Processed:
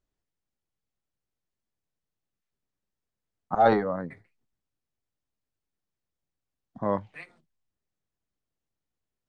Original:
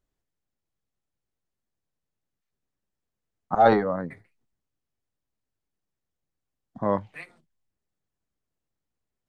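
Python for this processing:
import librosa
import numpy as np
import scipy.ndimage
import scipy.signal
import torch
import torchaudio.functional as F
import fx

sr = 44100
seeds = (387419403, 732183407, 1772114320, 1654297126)

y = scipy.signal.sosfilt(scipy.signal.butter(2, 8200.0, 'lowpass', fs=sr, output='sos'), x)
y = y * librosa.db_to_amplitude(-2.5)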